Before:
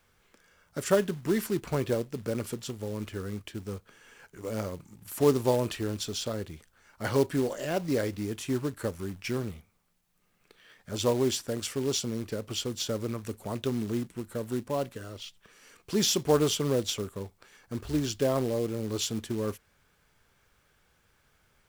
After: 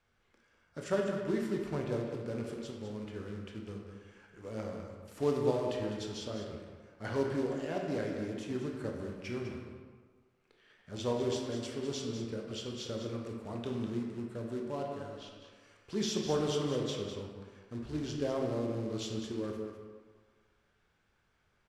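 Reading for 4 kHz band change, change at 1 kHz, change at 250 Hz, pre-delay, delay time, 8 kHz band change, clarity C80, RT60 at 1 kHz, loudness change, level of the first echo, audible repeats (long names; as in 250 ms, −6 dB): −8.5 dB, −5.5 dB, −5.0 dB, 17 ms, 201 ms, −12.5 dB, 3.0 dB, 1.7 s, −6.0 dB, −8.5 dB, 1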